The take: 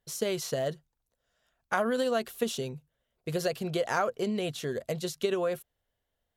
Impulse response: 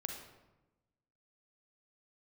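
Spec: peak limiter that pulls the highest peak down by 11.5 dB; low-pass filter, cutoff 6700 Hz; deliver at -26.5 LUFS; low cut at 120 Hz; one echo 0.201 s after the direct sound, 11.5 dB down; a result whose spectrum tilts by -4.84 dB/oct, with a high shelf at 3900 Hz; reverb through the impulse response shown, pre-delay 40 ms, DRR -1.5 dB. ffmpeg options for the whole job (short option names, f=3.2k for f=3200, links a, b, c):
-filter_complex "[0:a]highpass=120,lowpass=6.7k,highshelf=f=3.9k:g=-7,alimiter=level_in=1dB:limit=-24dB:level=0:latency=1,volume=-1dB,aecho=1:1:201:0.266,asplit=2[a][b];[1:a]atrim=start_sample=2205,adelay=40[c];[b][c]afir=irnorm=-1:irlink=0,volume=2dB[d];[a][d]amix=inputs=2:normalize=0,volume=5dB"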